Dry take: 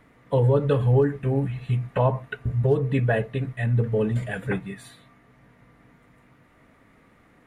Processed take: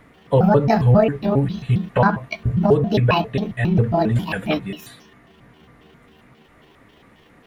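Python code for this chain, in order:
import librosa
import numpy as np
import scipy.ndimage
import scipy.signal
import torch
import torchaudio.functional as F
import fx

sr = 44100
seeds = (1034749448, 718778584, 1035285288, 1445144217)

y = fx.pitch_trill(x, sr, semitones=7.5, every_ms=135)
y = y * librosa.db_to_amplitude(6.0)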